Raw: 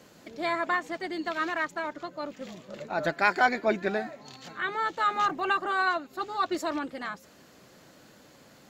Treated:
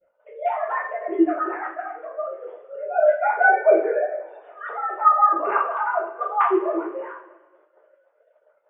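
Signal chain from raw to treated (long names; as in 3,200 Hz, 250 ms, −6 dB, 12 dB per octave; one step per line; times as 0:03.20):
three sine waves on the formant tracks
low-pass filter 1,000 Hz 12 dB per octave
mains-hum notches 60/120/180/240/300/360/420/480 Hz
coupled-rooms reverb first 0.4 s, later 1.7 s, from −17 dB, DRR −9.5 dB
downward expander −49 dBFS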